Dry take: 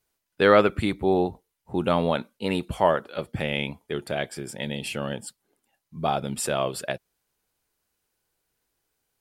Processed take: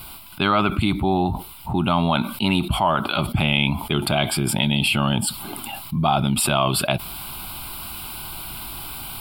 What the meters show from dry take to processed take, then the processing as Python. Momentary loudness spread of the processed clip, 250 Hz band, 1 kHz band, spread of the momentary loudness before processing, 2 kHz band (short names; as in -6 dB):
12 LU, +6.5 dB, +5.5 dB, 14 LU, +5.0 dB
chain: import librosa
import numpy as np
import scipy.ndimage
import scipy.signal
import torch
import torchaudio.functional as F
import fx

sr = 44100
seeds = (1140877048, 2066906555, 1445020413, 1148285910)

y = fx.rider(x, sr, range_db=3, speed_s=0.5)
y = fx.fixed_phaser(y, sr, hz=1800.0, stages=6)
y = fx.env_flatten(y, sr, amount_pct=70)
y = y * 10.0 ** (4.5 / 20.0)